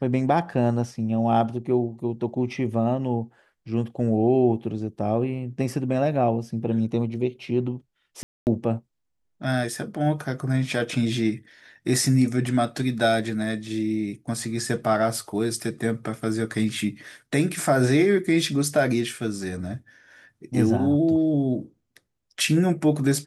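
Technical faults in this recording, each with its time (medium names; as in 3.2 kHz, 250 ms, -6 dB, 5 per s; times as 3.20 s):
8.23–8.47 s: dropout 239 ms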